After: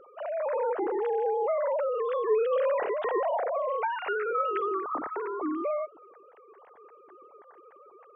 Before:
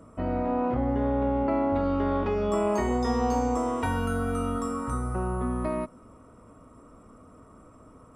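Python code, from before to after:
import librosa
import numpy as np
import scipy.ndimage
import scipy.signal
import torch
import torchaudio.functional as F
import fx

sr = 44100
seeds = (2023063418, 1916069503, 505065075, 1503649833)

y = fx.sine_speech(x, sr)
y = y * librosa.db_to_amplitude(-2.0)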